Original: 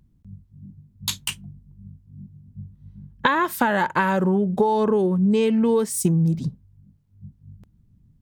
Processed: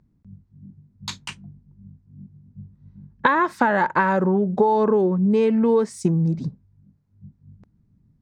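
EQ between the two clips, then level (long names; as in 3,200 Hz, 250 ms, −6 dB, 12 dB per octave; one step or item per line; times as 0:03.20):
high-frequency loss of the air 130 metres
low-shelf EQ 120 Hz −11.5 dB
parametric band 3,100 Hz −9 dB 0.59 octaves
+3.0 dB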